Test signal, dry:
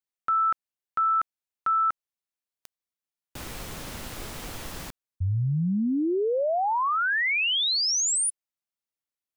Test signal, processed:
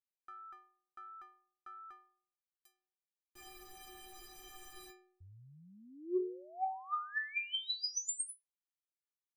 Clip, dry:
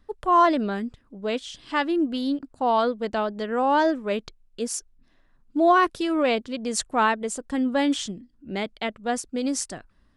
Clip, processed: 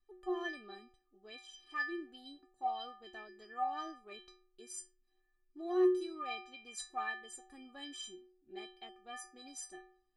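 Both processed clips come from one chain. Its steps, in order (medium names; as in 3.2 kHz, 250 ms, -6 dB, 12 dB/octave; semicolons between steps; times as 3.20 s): inharmonic resonator 360 Hz, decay 0.66 s, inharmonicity 0.03; Chebyshev shaper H 3 -29 dB, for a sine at -24.5 dBFS; trim +4.5 dB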